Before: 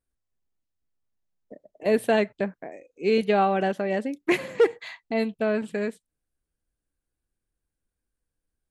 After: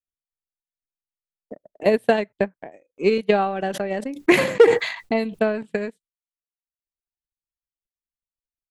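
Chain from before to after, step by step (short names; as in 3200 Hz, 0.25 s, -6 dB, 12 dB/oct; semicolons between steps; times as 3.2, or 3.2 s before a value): gate with hold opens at -45 dBFS; transient shaper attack +10 dB, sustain -11 dB; 3.26–5.63 sustainer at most 78 dB/s; gain -2 dB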